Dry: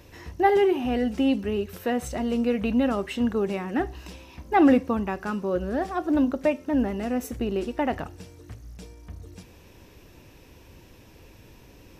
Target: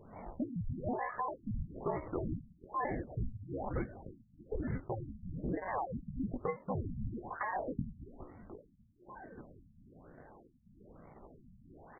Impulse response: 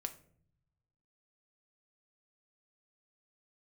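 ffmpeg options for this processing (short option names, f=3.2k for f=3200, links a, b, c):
-af "afftfilt=real='real(if(lt(b,272),68*(eq(floor(b/68),0)*1+eq(floor(b/68),1)*0+eq(floor(b/68),2)*3+eq(floor(b/68),3)*2)+mod(b,68),b),0)':imag='imag(if(lt(b,272),68*(eq(floor(b/68),0)*1+eq(floor(b/68),1)*0+eq(floor(b/68),2)*3+eq(floor(b/68),3)*2)+mod(b,68),b),0)':win_size=2048:overlap=0.75,firequalizer=gain_entry='entry(110,0);entry(160,-20);entry(450,-9);entry(680,-13);entry(1500,-13);entry(2300,4);entry(3500,-11);entry(6400,-9)':delay=0.05:min_phase=1,acompressor=threshold=-34dB:ratio=16,flanger=delay=16:depth=6.9:speed=1.6,aexciter=amount=3.7:drive=3.1:freq=11k,acrusher=samples=22:mix=1:aa=0.000001:lfo=1:lforange=13.2:lforate=0.64,afftfilt=real='re*lt(b*sr/1024,230*pow(2300/230,0.5+0.5*sin(2*PI*1.1*pts/sr)))':imag='im*lt(b*sr/1024,230*pow(2300/230,0.5+0.5*sin(2*PI*1.1*pts/sr)))':win_size=1024:overlap=0.75,volume=5dB"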